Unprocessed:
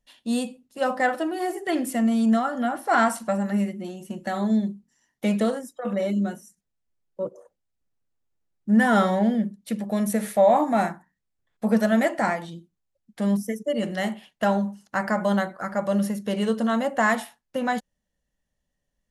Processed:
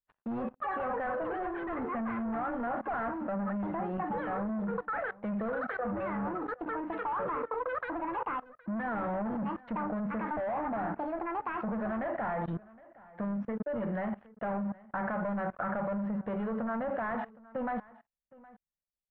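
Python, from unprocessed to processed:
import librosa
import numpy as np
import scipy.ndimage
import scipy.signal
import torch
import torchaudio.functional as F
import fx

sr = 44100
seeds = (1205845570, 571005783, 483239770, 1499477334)

y = fx.echo_pitch(x, sr, ms=131, semitones=7, count=2, db_per_echo=-6.0)
y = fx.low_shelf(y, sr, hz=490.0, db=-3.0)
y = fx.leveller(y, sr, passes=5)
y = fx.level_steps(y, sr, step_db=23)
y = scipy.signal.sosfilt(scipy.signal.butter(4, 1600.0, 'lowpass', fs=sr, output='sos'), y)
y = fx.peak_eq(y, sr, hz=330.0, db=-5.5, octaves=0.76)
y = y + 10.0 ** (-21.5 / 20.0) * np.pad(y, (int(766 * sr / 1000.0), 0))[:len(y)]
y = y * librosa.db_to_amplitude(-8.5)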